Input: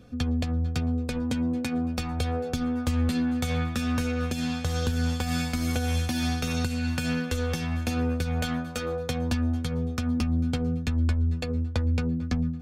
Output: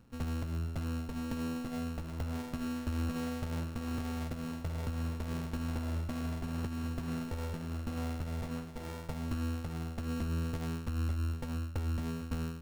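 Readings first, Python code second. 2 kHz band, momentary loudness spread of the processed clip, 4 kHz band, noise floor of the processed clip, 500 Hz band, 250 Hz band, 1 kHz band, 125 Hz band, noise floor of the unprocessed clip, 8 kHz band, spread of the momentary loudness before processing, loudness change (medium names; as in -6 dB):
-12.5 dB, 4 LU, -14.0 dB, -43 dBFS, -11.0 dB, -10.0 dB, -8.5 dB, -8.5 dB, -33 dBFS, -12.5 dB, 3 LU, -9.5 dB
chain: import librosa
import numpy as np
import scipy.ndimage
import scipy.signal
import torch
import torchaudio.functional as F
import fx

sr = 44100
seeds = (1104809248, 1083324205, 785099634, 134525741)

y = np.r_[np.sort(x[:len(x) // 32 * 32].reshape(-1, 32), axis=1).ravel(), x[len(x) // 32 * 32:]]
y = fx.running_max(y, sr, window=33)
y = y * librosa.db_to_amplitude(-8.5)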